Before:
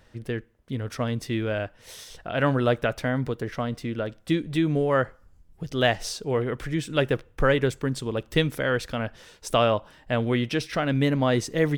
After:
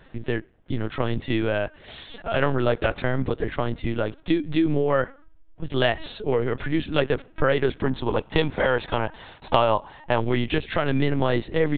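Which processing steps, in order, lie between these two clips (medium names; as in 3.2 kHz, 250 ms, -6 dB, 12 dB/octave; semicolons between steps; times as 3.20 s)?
LPC vocoder at 8 kHz pitch kept; 7.85–10.21 s: peaking EQ 890 Hz +11 dB 0.51 oct; compression 2:1, threshold -25 dBFS, peak gain reduction 7.5 dB; trim +5.5 dB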